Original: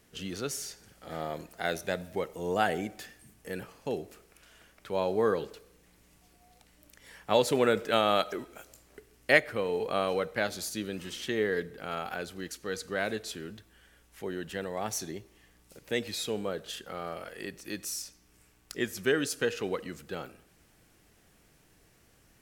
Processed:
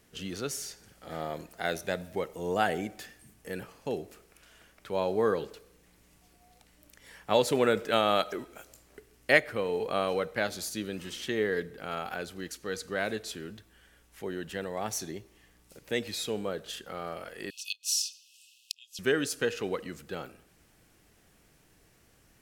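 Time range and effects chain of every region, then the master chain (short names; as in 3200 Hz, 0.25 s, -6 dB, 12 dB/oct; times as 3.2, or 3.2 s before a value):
17.5–18.99 bell 3300 Hz +13.5 dB 2.6 oct + flipped gate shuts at -16 dBFS, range -25 dB + brick-wall FIR high-pass 2500 Hz
whole clip: dry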